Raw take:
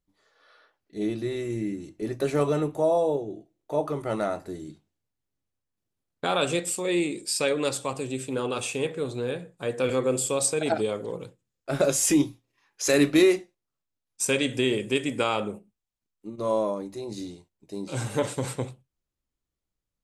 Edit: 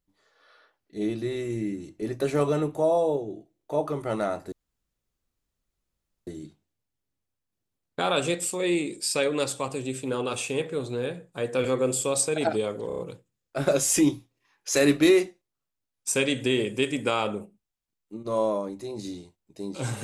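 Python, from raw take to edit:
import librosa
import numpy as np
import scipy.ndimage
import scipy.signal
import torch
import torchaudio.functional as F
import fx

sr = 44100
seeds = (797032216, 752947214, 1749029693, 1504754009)

y = fx.edit(x, sr, fx.insert_room_tone(at_s=4.52, length_s=1.75),
    fx.stutter(start_s=11.12, slice_s=0.03, count=5), tone=tone)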